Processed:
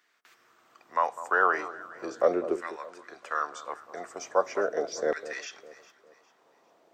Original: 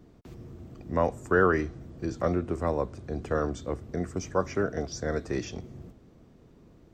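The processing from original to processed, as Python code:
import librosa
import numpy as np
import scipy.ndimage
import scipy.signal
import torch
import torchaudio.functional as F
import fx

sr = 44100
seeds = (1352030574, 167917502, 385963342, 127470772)

y = fx.filter_lfo_highpass(x, sr, shape='saw_down', hz=0.39, low_hz=420.0, high_hz=1800.0, q=2.1)
y = fx.echo_alternate(y, sr, ms=202, hz=1300.0, feedback_pct=59, wet_db=-13.5)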